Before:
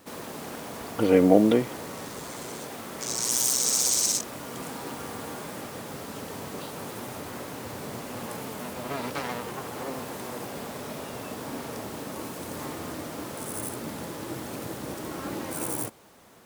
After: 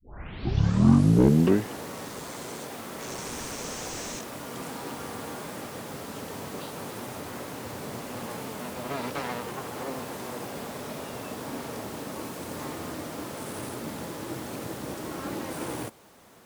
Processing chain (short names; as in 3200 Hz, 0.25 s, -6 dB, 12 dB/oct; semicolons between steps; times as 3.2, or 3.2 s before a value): tape start at the beginning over 1.87 s; slew limiter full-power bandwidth 74 Hz